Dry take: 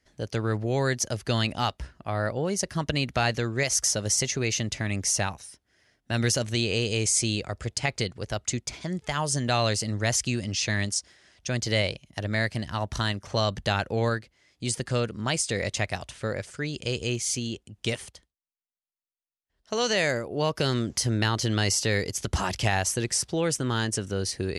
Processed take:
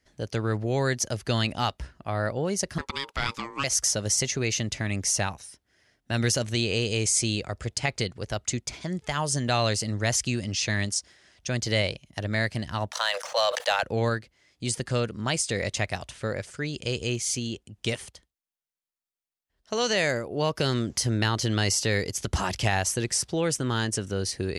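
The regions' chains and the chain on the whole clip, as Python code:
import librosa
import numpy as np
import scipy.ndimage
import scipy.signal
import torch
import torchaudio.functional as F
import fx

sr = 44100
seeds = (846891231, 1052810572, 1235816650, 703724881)

y = fx.chain(x, sr, fx.highpass(hz=360.0, slope=12),
    fx.ring_mod(carrier_hz=690.0), at=(2.78, 3.64))
y = fx.chain(y, sr, fx.cheby1_highpass(hz=490.0, order=8),
    fx.leveller(passes=1),
    fx.sustainer(db_per_s=67.0), at=(12.91, 13.83))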